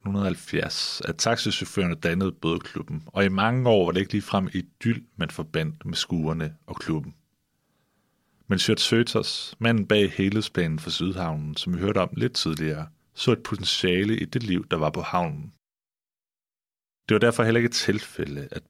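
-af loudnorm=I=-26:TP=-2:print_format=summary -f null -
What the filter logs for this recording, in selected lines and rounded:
Input Integrated:    -24.9 LUFS
Input True Peak:      -7.2 dBTP
Input LRA:             4.0 LU
Input Threshold:     -35.3 LUFS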